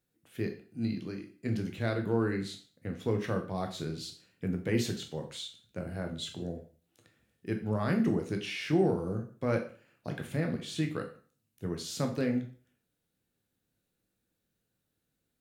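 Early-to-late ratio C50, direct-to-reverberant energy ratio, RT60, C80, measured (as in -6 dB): 10.5 dB, 3.5 dB, 0.45 s, 14.5 dB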